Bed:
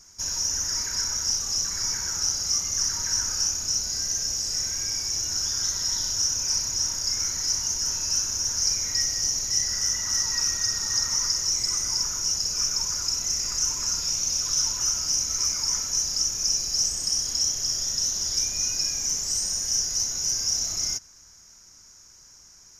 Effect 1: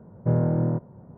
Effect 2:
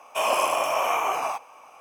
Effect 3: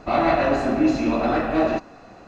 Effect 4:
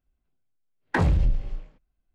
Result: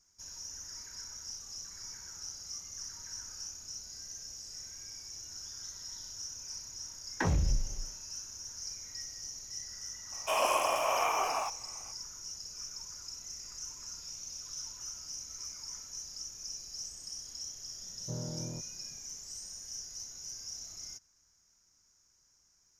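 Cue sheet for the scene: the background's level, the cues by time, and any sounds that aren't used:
bed -18 dB
6.26 s: add 4 -8 dB
10.12 s: add 2 -6 dB
17.82 s: add 1 -17.5 dB
not used: 3

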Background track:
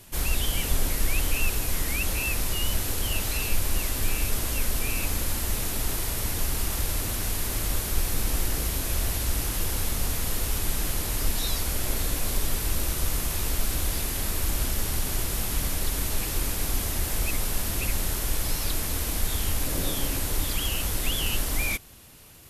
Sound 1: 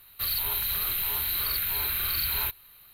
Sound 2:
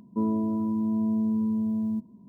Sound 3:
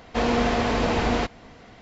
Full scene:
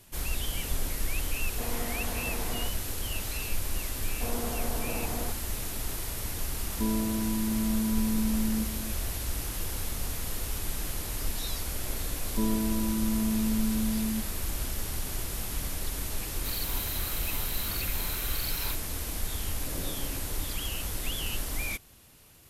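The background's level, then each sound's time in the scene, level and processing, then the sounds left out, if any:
background track -6 dB
1.43 s: add 3 -15.5 dB
4.06 s: add 3 -13 dB + low-pass 1.2 kHz
6.64 s: add 2 -3.5 dB + delay 1038 ms -12 dB
12.21 s: add 2 -3 dB
16.25 s: add 1 -5.5 dB + peaking EQ 13 kHz -3.5 dB 1 oct

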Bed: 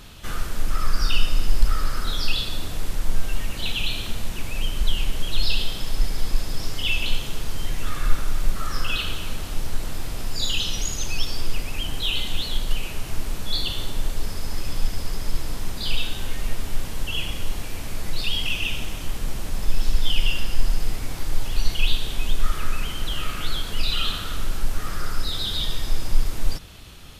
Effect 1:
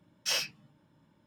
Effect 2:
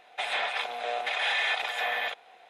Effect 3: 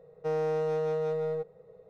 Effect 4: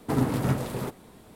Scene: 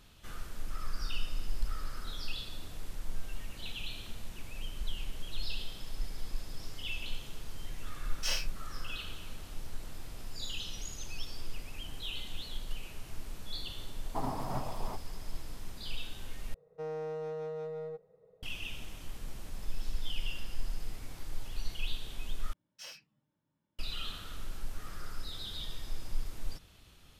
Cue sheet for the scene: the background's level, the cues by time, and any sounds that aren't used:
bed -15 dB
7.97 s: add 1 -5 dB + doubling 33 ms -7 dB
14.06 s: add 4 -15 dB + high-order bell 850 Hz +13 dB 1.1 oct
16.54 s: replace with 3 -9 dB
22.53 s: replace with 1 -17.5 dB
not used: 2

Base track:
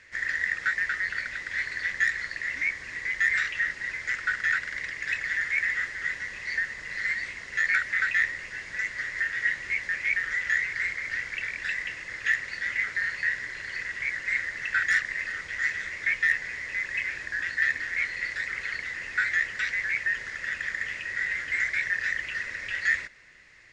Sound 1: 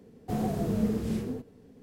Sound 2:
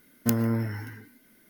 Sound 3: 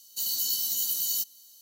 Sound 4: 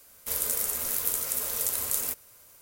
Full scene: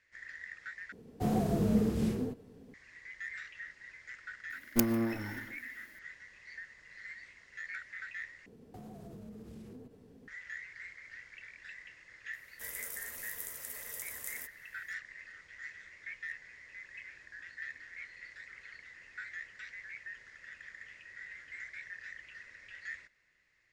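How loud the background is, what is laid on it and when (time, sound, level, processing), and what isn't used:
base track -18.5 dB
0.92 s: replace with 1 -0.5 dB
4.50 s: add 2 -2 dB + comb filter that takes the minimum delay 3.4 ms
8.46 s: replace with 1 -3 dB + compression, threshold -44 dBFS
12.33 s: add 4 -14.5 dB + band-stop 4.3 kHz, Q 8.7
not used: 3

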